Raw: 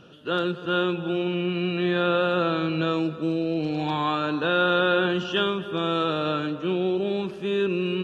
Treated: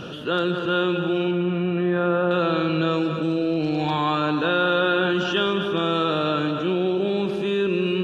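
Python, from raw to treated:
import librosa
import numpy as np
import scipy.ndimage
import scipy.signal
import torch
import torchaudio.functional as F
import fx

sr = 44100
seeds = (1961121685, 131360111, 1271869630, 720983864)

y = fx.lowpass(x, sr, hz=1600.0, slope=12, at=(1.31, 2.31))
y = fx.echo_feedback(y, sr, ms=199, feedback_pct=59, wet_db=-12)
y = fx.env_flatten(y, sr, amount_pct=50)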